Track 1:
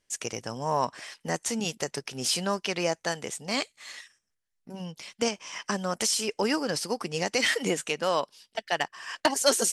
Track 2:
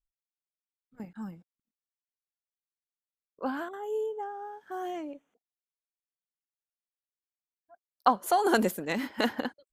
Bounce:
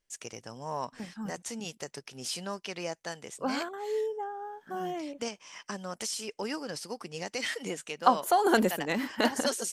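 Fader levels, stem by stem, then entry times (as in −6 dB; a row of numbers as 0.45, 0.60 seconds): −8.5, +0.5 decibels; 0.00, 0.00 seconds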